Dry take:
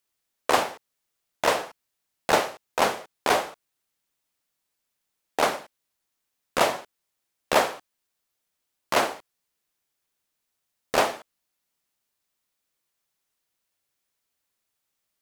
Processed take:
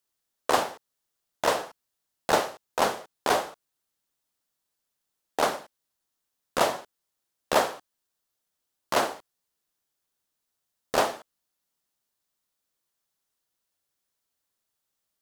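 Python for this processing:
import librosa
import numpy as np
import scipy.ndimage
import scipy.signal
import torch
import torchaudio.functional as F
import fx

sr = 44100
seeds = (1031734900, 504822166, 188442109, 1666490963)

y = fx.peak_eq(x, sr, hz=2300.0, db=-5.0, octaves=0.59)
y = y * librosa.db_to_amplitude(-1.5)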